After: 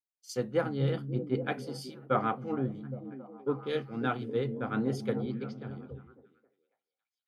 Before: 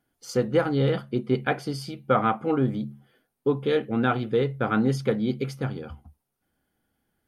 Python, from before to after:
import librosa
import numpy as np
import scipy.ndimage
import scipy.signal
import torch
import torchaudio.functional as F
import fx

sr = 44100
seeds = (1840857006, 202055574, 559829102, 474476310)

y = fx.cheby1_bandpass(x, sr, low_hz=110.0, high_hz=4900.0, order=3, at=(5.25, 5.7))
y = fx.echo_stepped(y, sr, ms=273, hz=170.0, octaves=0.7, feedback_pct=70, wet_db=-2.0)
y = fx.band_widen(y, sr, depth_pct=100)
y = y * librosa.db_to_amplitude(-9.0)